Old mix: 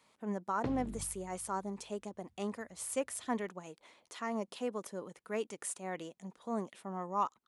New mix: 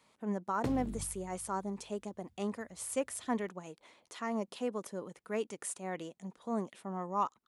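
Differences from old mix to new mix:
background: remove high-frequency loss of the air 170 metres
master: add low-shelf EQ 370 Hz +3 dB

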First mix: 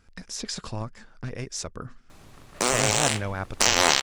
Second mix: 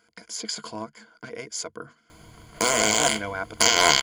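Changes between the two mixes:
speech: add high-pass filter 280 Hz 12 dB per octave
master: add EQ curve with evenly spaced ripples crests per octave 1.8, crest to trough 13 dB

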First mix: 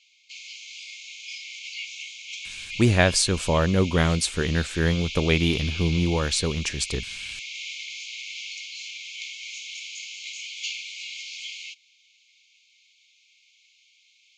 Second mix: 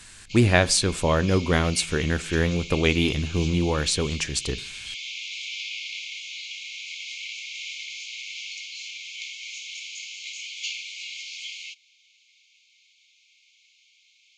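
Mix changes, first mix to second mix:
speech: entry −2.45 s
reverb: on, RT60 0.45 s

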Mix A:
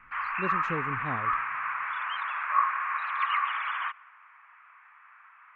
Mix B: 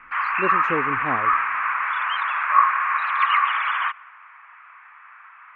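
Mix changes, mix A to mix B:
speech: add flat-topped bell 600 Hz +9.5 dB 2.8 octaves
background +8.5 dB

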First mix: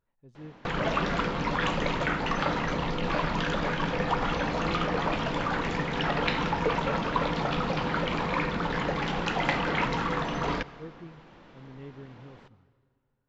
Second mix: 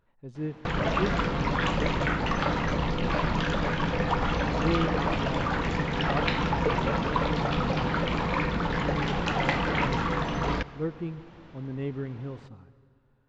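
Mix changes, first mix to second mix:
speech +11.5 dB
background: add parametric band 67 Hz +8.5 dB 1.9 octaves

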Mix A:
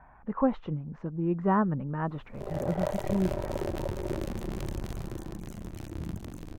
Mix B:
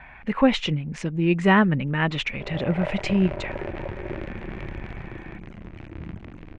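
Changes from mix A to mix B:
speech: remove transistor ladder low-pass 1,500 Hz, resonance 35%
master: add low-pass with resonance 2,300 Hz, resonance Q 2.5

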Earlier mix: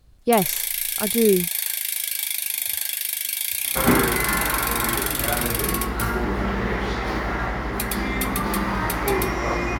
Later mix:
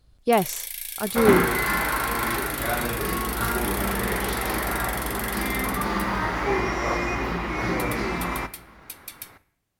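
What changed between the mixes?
first sound −8.5 dB
second sound: entry −2.60 s
master: add low-shelf EQ 340 Hz −4 dB

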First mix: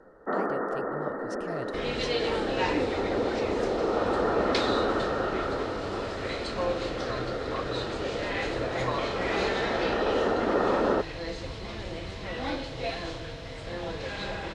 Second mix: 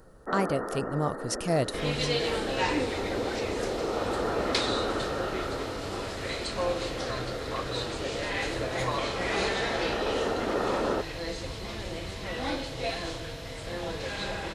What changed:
speech +11.0 dB
first sound −4.0 dB
master: remove high-frequency loss of the air 84 metres

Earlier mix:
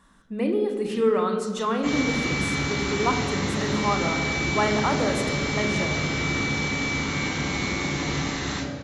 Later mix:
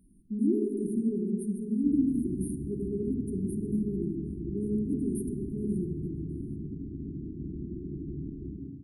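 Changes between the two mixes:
background: send −8.5 dB
master: add linear-phase brick-wall band-stop 410–8,800 Hz

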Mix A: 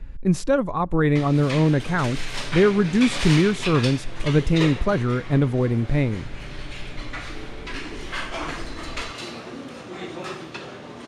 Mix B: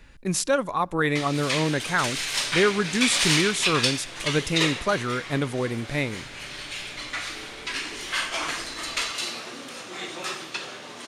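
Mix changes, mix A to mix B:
speech: send +6.0 dB
master: add spectral tilt +3.5 dB per octave

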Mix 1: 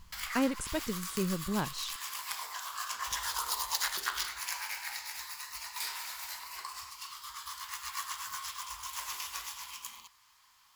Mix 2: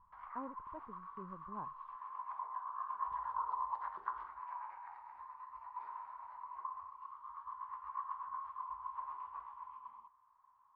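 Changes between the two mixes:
speech −7.5 dB
master: add transistor ladder low-pass 1,100 Hz, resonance 75%

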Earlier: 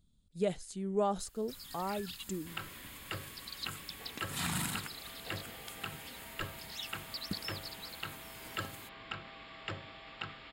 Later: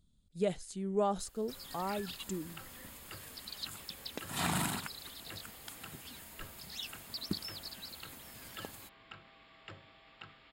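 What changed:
first sound: add parametric band 550 Hz +11.5 dB 1.6 octaves
second sound −9.5 dB

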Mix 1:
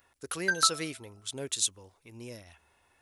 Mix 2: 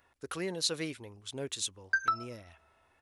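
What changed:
background: entry +1.45 s
master: add high-shelf EQ 5,000 Hz −11 dB

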